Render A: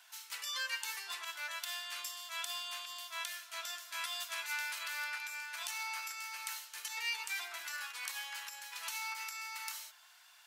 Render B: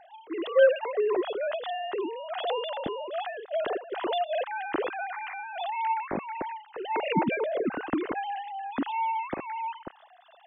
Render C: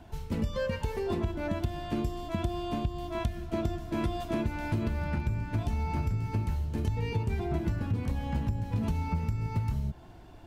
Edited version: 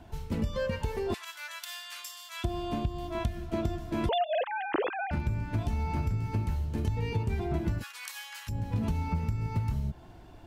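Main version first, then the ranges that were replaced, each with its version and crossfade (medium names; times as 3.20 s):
C
1.14–2.44 s: from A
4.09–5.11 s: from B
7.81–8.50 s: from A, crossfade 0.06 s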